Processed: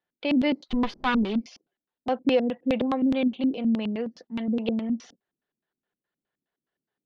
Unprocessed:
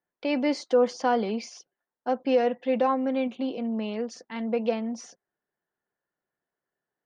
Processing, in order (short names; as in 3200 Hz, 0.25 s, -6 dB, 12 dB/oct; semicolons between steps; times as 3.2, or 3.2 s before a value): 0.68–1.41 minimum comb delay 4.9 ms; LFO low-pass square 4.8 Hz 260–3500 Hz